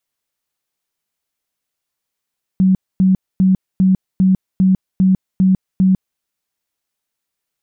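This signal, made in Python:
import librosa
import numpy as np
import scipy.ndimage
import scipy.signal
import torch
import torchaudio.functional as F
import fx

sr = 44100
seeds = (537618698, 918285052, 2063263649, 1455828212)

y = fx.tone_burst(sr, hz=188.0, cycles=28, every_s=0.4, bursts=9, level_db=-8.5)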